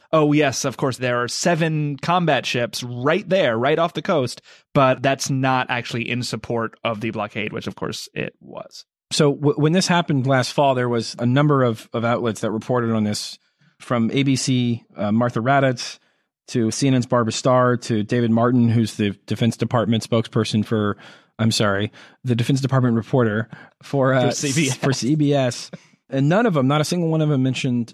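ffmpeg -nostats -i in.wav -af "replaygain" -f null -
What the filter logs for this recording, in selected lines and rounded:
track_gain = +0.8 dB
track_peak = 0.397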